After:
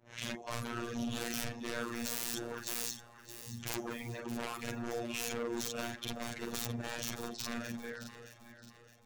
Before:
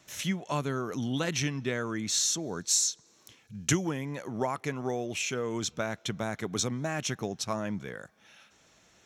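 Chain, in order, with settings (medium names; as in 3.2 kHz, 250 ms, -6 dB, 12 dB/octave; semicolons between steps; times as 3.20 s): short-time spectra conjugated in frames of 111 ms; reverb removal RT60 0.96 s; level-controlled noise filter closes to 710 Hz, open at -31.5 dBFS; treble shelf 3.9 kHz +9.5 dB; in parallel at -2 dB: compression, threshold -50 dBFS, peak gain reduction 28 dB; on the sum: wavefolder -32.5 dBFS; robot voice 118 Hz; on a send: echo whose repeats swap between lows and highs 309 ms, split 870 Hz, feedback 65%, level -8 dB; on the sum: trim +1 dB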